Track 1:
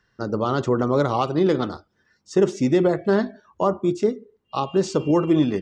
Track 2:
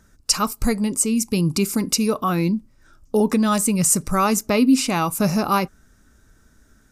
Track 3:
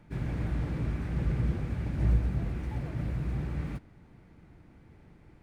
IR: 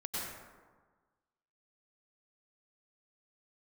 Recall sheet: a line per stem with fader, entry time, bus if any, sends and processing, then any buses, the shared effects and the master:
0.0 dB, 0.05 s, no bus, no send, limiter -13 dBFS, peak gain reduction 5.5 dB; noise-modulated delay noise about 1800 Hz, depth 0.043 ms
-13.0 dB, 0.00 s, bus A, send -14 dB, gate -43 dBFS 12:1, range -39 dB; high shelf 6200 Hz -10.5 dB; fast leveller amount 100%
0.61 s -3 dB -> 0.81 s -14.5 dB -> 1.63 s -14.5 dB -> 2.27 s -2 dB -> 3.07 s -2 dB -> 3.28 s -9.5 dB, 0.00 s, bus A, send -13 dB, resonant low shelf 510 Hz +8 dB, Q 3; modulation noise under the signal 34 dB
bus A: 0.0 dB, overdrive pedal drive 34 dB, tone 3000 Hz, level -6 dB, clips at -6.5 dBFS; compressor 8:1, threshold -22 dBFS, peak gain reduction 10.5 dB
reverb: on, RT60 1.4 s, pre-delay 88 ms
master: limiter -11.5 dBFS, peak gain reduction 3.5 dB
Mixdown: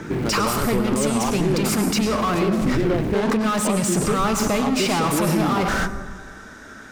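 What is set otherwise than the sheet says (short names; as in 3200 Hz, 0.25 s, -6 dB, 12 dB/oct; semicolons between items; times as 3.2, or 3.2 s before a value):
stem 2 -13.0 dB -> -4.0 dB; stem 3: send off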